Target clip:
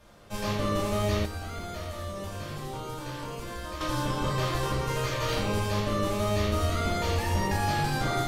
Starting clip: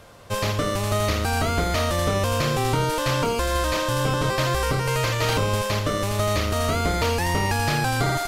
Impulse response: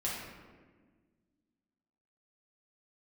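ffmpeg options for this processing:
-filter_complex "[1:a]atrim=start_sample=2205,asetrate=74970,aresample=44100[link_01];[0:a][link_01]afir=irnorm=-1:irlink=0,asettb=1/sr,asplit=3[link_02][link_03][link_04];[link_02]atrim=end=1.254[link_05];[link_03]atrim=start=1.25:end=3.81,asetpts=PTS-STARTPTS,afade=type=in:duration=0.004:curve=qsin,afade=type=out:start_time=2.556:duration=0.004:curve=qsin,acrossover=split=3400|7600[link_06][link_07][link_08];[link_06]acompressor=threshold=-29dB:ratio=4[link_09];[link_07]acompressor=threshold=-48dB:ratio=4[link_10];[link_08]acompressor=threshold=-49dB:ratio=4[link_11];[link_09][link_10][link_11]amix=inputs=3:normalize=0[link_12];[link_04]atrim=start=3.806[link_13];[link_05][link_12]acrossfade=duration=0.004:curve1=hsin:curve2=qsin[link_14];[link_14][link_13]acrossfade=duration=0.004:curve1=qsin:curve2=hsin,volume=-6dB"

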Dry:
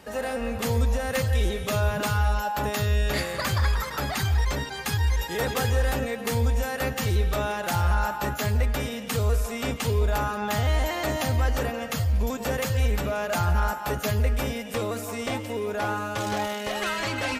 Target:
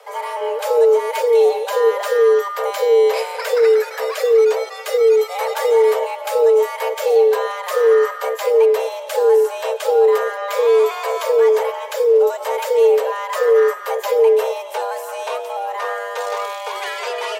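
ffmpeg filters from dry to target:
ffmpeg -i in.wav -af "afreqshift=380,equalizer=frequency=310:width=0.73:gain=13.5" out.wav

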